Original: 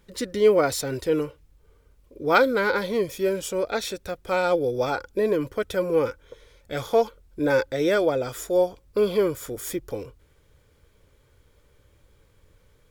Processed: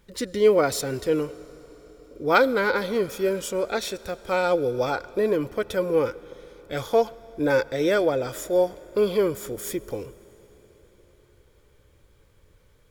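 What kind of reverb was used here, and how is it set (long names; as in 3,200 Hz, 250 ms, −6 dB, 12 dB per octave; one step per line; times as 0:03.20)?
comb and all-pass reverb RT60 4.8 s, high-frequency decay 0.95×, pre-delay 55 ms, DRR 19 dB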